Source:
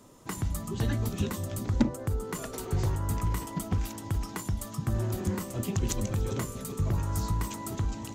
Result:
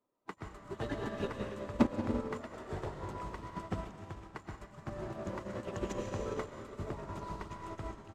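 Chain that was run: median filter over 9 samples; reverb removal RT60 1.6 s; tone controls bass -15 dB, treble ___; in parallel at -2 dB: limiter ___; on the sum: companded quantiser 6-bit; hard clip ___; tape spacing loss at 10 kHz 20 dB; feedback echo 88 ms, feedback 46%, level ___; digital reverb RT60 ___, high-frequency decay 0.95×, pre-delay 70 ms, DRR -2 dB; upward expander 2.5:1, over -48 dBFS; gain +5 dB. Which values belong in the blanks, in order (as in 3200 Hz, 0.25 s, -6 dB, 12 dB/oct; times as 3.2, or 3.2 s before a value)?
+7 dB, -22 dBFS, -21 dBFS, -22 dB, 2.9 s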